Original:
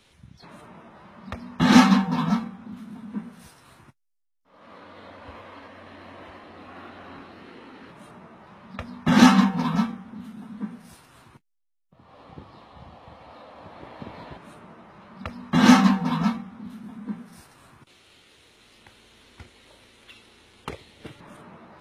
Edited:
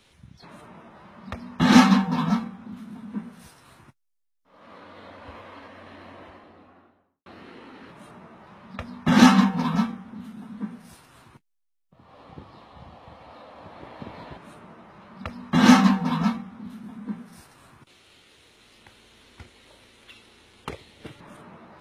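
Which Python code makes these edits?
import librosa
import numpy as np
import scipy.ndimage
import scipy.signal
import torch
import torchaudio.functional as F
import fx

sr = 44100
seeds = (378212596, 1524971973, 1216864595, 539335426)

y = fx.studio_fade_out(x, sr, start_s=5.92, length_s=1.34)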